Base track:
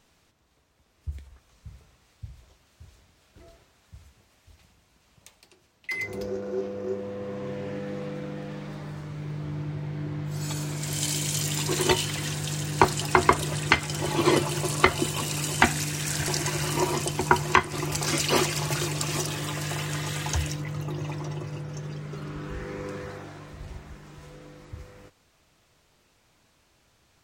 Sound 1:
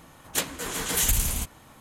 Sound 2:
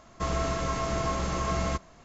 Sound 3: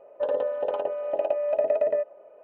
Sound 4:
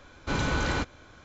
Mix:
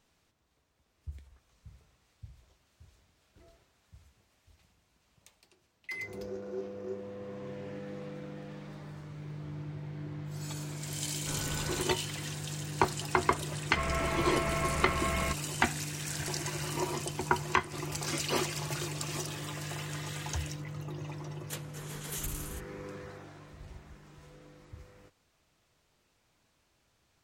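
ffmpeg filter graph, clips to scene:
ffmpeg -i bed.wav -i cue0.wav -i cue1.wav -i cue2.wav -i cue3.wav -filter_complex "[0:a]volume=-8dB[link_01];[2:a]lowpass=frequency=2300:width_type=q:width=3.4[link_02];[4:a]atrim=end=1.24,asetpts=PTS-STARTPTS,volume=-12.5dB,afade=type=in:duration=0.004:curve=hsin,afade=type=out:start_time=1.236:duration=0.004:curve=hsin,adelay=10990[link_03];[link_02]atrim=end=2.04,asetpts=PTS-STARTPTS,volume=-5dB,afade=type=in:duration=0.004:curve=hsin,afade=type=out:start_time=2.036:duration=0.004:curve=hsin,adelay=13560[link_04];[1:a]atrim=end=1.8,asetpts=PTS-STARTPTS,volume=-15dB,afade=type=in:duration=0.004:curve=hsin,afade=type=out:start_time=1.796:duration=0.004:curve=hsin,adelay=21150[link_05];[link_01][link_03][link_04][link_05]amix=inputs=4:normalize=0" out.wav

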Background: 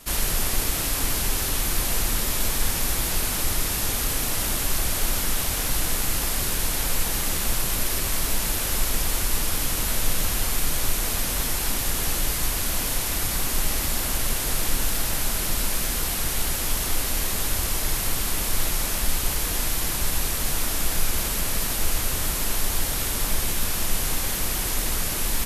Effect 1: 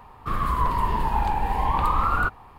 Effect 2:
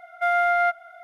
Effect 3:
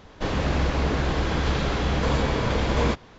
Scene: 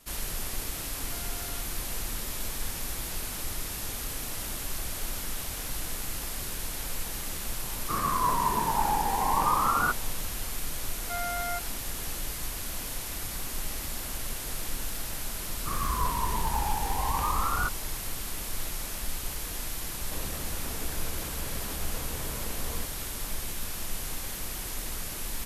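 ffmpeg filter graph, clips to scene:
ffmpeg -i bed.wav -i cue0.wav -i cue1.wav -i cue2.wav -filter_complex "[2:a]asplit=2[link_01][link_02];[1:a]asplit=2[link_03][link_04];[0:a]volume=-10dB[link_05];[link_01]acompressor=threshold=-28dB:ratio=6:attack=3.2:release=140:knee=1:detection=peak[link_06];[link_03]highpass=150,lowpass=2100[link_07];[link_02]asuperstop=centerf=790:order=4:qfactor=7.6[link_08];[3:a]acompressor=threshold=-33dB:ratio=6:attack=3.2:release=140:knee=1:detection=peak[link_09];[link_06]atrim=end=1.03,asetpts=PTS-STARTPTS,volume=-18dB,afade=type=in:duration=0.004:curve=hsin,afade=type=out:start_time=1.026:duration=0.004:curve=hsin,adelay=910[link_10];[link_07]atrim=end=2.58,asetpts=PTS-STARTPTS,volume=-1.5dB,afade=type=in:duration=0.004:curve=hsin,afade=type=out:start_time=2.576:duration=0.004:curve=hsin,adelay=7630[link_11];[link_08]atrim=end=1.03,asetpts=PTS-STARTPTS,volume=-13dB,afade=type=in:duration=0.004:curve=hsin,afade=type=out:start_time=1.026:duration=0.004:curve=hsin,adelay=10880[link_12];[link_04]atrim=end=2.58,asetpts=PTS-STARTPTS,volume=-6.5dB,afade=type=in:duration=0.004:curve=hsin,afade=type=out:start_time=2.576:duration=0.004:curve=hsin,adelay=679140S[link_13];[link_09]atrim=end=3.18,asetpts=PTS-STARTPTS,volume=-4.5dB,afade=type=in:duration=0.004:curve=hsin,afade=type=out:start_time=3.176:duration=0.004:curve=hsin,adelay=19910[link_14];[link_05][link_10][link_11][link_12][link_13][link_14]amix=inputs=6:normalize=0" out.wav

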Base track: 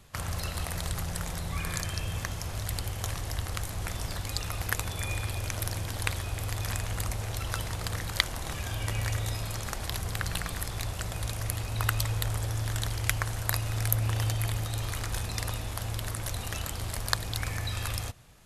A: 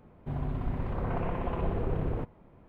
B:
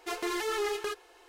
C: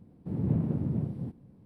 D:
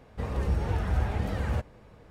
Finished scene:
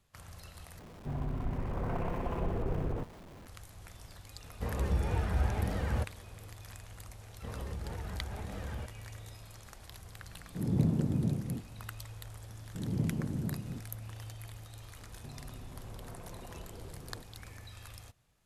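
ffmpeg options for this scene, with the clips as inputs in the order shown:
ffmpeg -i bed.wav -i cue0.wav -i cue1.wav -i cue2.wav -i cue3.wav -filter_complex "[1:a]asplit=2[link_01][link_02];[4:a]asplit=2[link_03][link_04];[3:a]asplit=2[link_05][link_06];[0:a]volume=-16.5dB[link_07];[link_01]aeval=exprs='val(0)+0.5*0.00596*sgn(val(0))':channel_layout=same[link_08];[link_04]acompressor=threshold=-26dB:ratio=6:attack=3.2:release=140:knee=1:detection=peak[link_09];[link_05]dynaudnorm=framelen=170:gausssize=3:maxgain=7dB[link_10];[link_02]acompressor=threshold=-41dB:ratio=6:attack=3.2:release=140:knee=1:detection=peak[link_11];[link_07]asplit=2[link_12][link_13];[link_12]atrim=end=0.794[link_14];[link_08]atrim=end=2.68,asetpts=PTS-STARTPTS,volume=-3.5dB[link_15];[link_13]atrim=start=3.466[link_16];[link_03]atrim=end=2.1,asetpts=PTS-STARTPTS,volume=-3dB,afade=type=in:duration=0.004:curve=hsin,afade=type=out:start_time=2.096:duration=0.004:curve=hsin,adelay=4430[link_17];[link_09]atrim=end=2.1,asetpts=PTS-STARTPTS,volume=-9dB,afade=type=in:duration=0.004:curve=hsin,afade=type=out:start_time=2.096:duration=0.004:curve=hsin,adelay=7250[link_18];[link_10]atrim=end=1.65,asetpts=PTS-STARTPTS,volume=-7.5dB,afade=type=in:duration=0.004:curve=hsin,afade=type=out:start_time=1.646:duration=0.004:curve=hsin,adelay=10290[link_19];[link_06]atrim=end=1.65,asetpts=PTS-STARTPTS,volume=-5dB,afade=type=in:duration=0.004:curve=hsin,afade=type=out:start_time=1.646:duration=0.004:curve=hsin,adelay=12490[link_20];[link_11]atrim=end=2.68,asetpts=PTS-STARTPTS,volume=-3.5dB,afade=type=in:duration=0.004:curve=hsin,afade=type=out:start_time=2.676:duration=0.004:curve=hsin,adelay=14980[link_21];[link_14][link_15]acrossfade=duration=0.004:curve1=hsin:curve2=hsin[link_22];[link_22][link_16]acrossfade=duration=0.004:curve1=hsin:curve2=hsin[link_23];[link_23][link_17][link_18][link_19][link_20][link_21]amix=inputs=6:normalize=0" out.wav

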